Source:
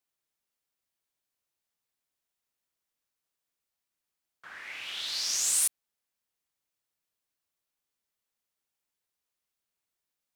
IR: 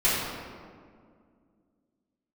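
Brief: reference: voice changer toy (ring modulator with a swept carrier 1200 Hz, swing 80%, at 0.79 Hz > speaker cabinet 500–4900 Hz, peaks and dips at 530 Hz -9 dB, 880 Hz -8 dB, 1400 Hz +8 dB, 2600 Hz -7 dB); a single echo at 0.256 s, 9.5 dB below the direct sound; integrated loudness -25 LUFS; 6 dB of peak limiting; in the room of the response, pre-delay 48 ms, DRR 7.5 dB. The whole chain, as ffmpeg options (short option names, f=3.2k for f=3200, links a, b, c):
-filter_complex "[0:a]alimiter=limit=-19.5dB:level=0:latency=1,aecho=1:1:256:0.335,asplit=2[a][b];[1:a]atrim=start_sample=2205,adelay=48[c];[b][c]afir=irnorm=-1:irlink=0,volume=-22.5dB[d];[a][d]amix=inputs=2:normalize=0,aeval=exprs='val(0)*sin(2*PI*1200*n/s+1200*0.8/0.79*sin(2*PI*0.79*n/s))':c=same,highpass=500,equalizer=f=530:t=q:w=4:g=-9,equalizer=f=880:t=q:w=4:g=-8,equalizer=f=1.4k:t=q:w=4:g=8,equalizer=f=2.6k:t=q:w=4:g=-7,lowpass=f=4.9k:w=0.5412,lowpass=f=4.9k:w=1.3066,volume=14dB"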